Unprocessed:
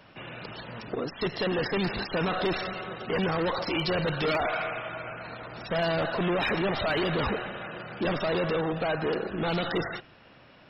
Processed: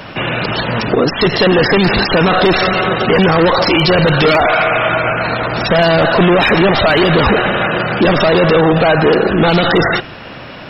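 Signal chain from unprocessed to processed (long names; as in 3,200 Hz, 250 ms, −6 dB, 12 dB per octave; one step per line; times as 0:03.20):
boost into a limiter +27 dB
level −3.5 dB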